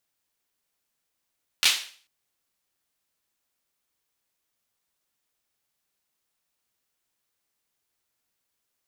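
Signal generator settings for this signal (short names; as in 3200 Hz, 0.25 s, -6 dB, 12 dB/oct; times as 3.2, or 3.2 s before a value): hand clap length 0.44 s, bursts 3, apart 12 ms, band 3200 Hz, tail 0.44 s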